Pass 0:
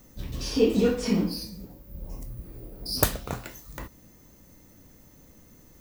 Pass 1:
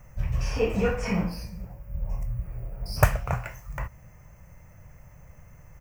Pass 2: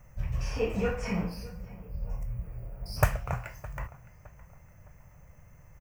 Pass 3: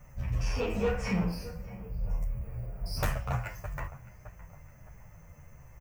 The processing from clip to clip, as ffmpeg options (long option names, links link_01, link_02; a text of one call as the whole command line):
ffmpeg -i in.wav -af "firequalizer=gain_entry='entry(140,0);entry(260,-23);entry(610,-3);entry(1300,-3);entry(2500,-3);entry(3700,-26);entry(5500,-13);entry(10000,-17)':delay=0.05:min_phase=1,volume=8.5dB" out.wav
ffmpeg -i in.wav -filter_complex "[0:a]asplit=2[link_01][link_02];[link_02]adelay=613,lowpass=frequency=2600:poles=1,volume=-19dB,asplit=2[link_03][link_04];[link_04]adelay=613,lowpass=frequency=2600:poles=1,volume=0.4,asplit=2[link_05][link_06];[link_06]adelay=613,lowpass=frequency=2600:poles=1,volume=0.4[link_07];[link_01][link_03][link_05][link_07]amix=inputs=4:normalize=0,volume=-4.5dB" out.wav
ffmpeg -i in.wav -filter_complex "[0:a]asoftclip=type=tanh:threshold=-25dB,asplit=2[link_01][link_02];[link_02]adelay=10.2,afreqshift=-1.3[link_03];[link_01][link_03]amix=inputs=2:normalize=1,volume=5.5dB" out.wav